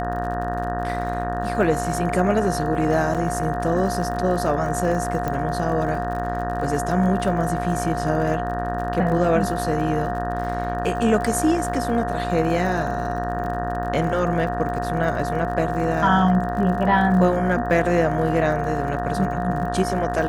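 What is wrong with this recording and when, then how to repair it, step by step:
buzz 60 Hz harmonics 31 -28 dBFS
crackle 57 per s -31 dBFS
whine 710 Hz -26 dBFS
3.14–3.15 s: dropout 6.9 ms
5.28 s: pop -13 dBFS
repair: de-click; de-hum 60 Hz, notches 31; band-stop 710 Hz, Q 30; interpolate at 3.14 s, 6.9 ms

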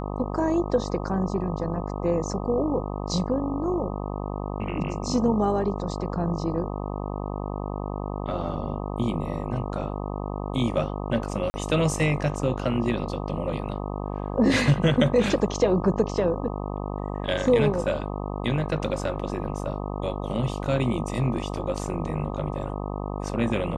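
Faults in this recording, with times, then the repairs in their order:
buzz 50 Hz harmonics 25 -31 dBFS
11.50–11.54 s: dropout 40 ms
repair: de-hum 50 Hz, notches 25; interpolate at 11.50 s, 40 ms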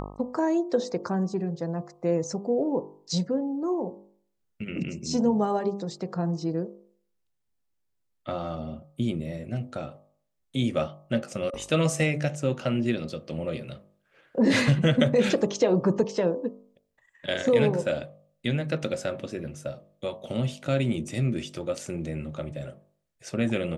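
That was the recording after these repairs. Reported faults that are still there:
nothing left

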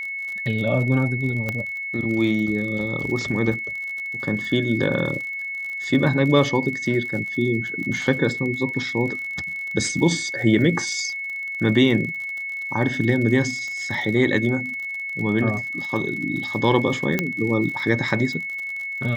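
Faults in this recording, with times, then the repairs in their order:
crackle 50 per s -30 dBFS
whine 2.2 kHz -27 dBFS
1.49 s: pop -12 dBFS
13.68 s: pop
17.19 s: pop -7 dBFS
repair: de-click; band-stop 2.2 kHz, Q 30

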